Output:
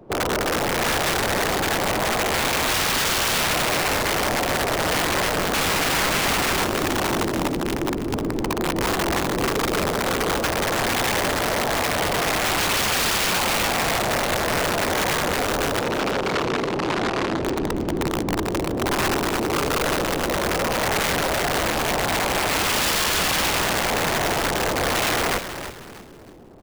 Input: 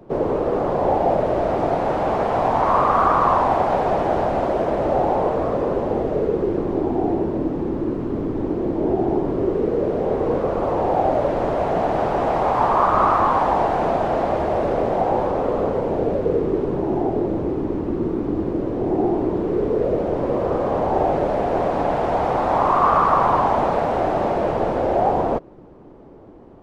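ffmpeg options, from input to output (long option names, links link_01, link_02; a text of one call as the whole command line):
ffmpeg -i in.wav -filter_complex "[0:a]asettb=1/sr,asplit=3[link_01][link_02][link_03];[link_01]atrim=end=5.544[link_04];[link_02]atrim=start=5.54:end=6.65,asetpts=PTS-STARTPTS,afade=type=in:duration=0.004:curve=qsin,afade=type=out:start_time=1.106:duration=0.004:curve=qsin,acontrast=81[link_05];[link_03]atrim=start=6.646[link_06];[link_04][link_05]acrossfade=duration=0.004:curve1=hsin:curve2=qsin[link_07];[link_07][link_06]acrossfade=duration=0.004:curve1=qsin:curve2=hsin,aeval=exprs='(mod(5.96*val(0)+1,2)-1)/5.96':channel_layout=same,asettb=1/sr,asplit=3[link_08][link_09][link_10];[link_08]atrim=end=15.794[link_11];[link_09]atrim=start=15.79:end=17.4,asetpts=PTS-STARTPTS,afade=type=in:duration=0.004:curve=qsin,afade=type=out:start_time=1.606:duration=0.004:curve=qsin,highpass=120,lowpass=4800[link_12];[link_10]atrim=start=17.396[link_13];[link_11][link_12]acrossfade=duration=0.004:curve1=hsin:curve2=qsin[link_14];[link_14][link_13]acrossfade=duration=0.004:curve1=qsin:curve2=hsin,asplit=5[link_15][link_16][link_17][link_18][link_19];[link_16]adelay=318,afreqshift=-120,volume=-10dB[link_20];[link_17]adelay=636,afreqshift=-240,volume=-19.1dB[link_21];[link_18]adelay=954,afreqshift=-360,volume=-28.2dB[link_22];[link_19]adelay=1272,afreqshift=-480,volume=-37.4dB[link_23];[link_15][link_20][link_21][link_22][link_23]amix=inputs=5:normalize=0,volume=-1.5dB" out.wav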